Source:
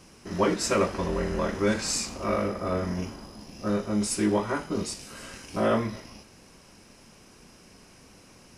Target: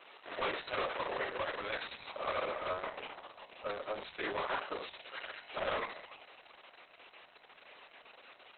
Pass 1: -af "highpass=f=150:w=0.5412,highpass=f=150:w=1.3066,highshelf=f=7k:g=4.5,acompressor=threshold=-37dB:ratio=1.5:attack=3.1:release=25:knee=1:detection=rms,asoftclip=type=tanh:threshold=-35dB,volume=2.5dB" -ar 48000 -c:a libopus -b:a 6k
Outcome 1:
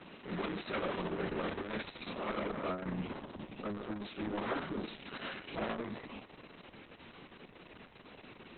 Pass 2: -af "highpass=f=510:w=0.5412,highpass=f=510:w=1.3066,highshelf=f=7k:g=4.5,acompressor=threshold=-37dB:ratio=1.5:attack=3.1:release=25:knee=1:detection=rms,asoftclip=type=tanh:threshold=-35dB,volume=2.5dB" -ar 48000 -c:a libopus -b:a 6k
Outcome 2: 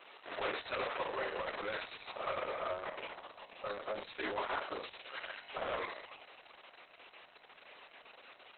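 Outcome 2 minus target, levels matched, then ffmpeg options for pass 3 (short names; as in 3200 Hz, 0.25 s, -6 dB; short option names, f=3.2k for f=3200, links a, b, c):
compressor: peak gain reduction +6.5 dB
-af "highpass=f=510:w=0.5412,highpass=f=510:w=1.3066,highshelf=f=7k:g=4.5,asoftclip=type=tanh:threshold=-35dB,volume=2.5dB" -ar 48000 -c:a libopus -b:a 6k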